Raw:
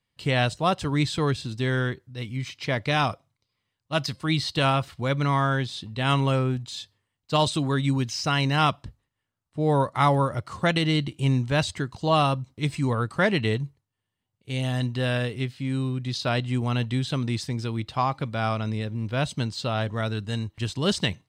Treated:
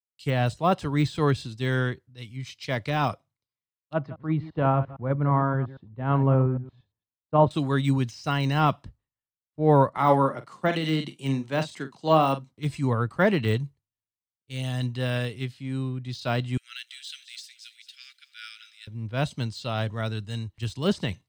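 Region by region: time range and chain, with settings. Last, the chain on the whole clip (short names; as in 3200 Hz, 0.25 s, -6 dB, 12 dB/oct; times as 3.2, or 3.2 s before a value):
3.93–7.51 reverse delay 0.115 s, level -12 dB + LPF 1100 Hz
9.97–12.51 HPF 160 Hz 24 dB/oct + doubler 44 ms -10.5 dB
16.57–18.87 steep high-pass 1400 Hz 96 dB/oct + lo-fi delay 0.216 s, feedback 55%, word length 10-bit, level -14 dB
whole clip: de-esser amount 95%; three-band expander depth 100%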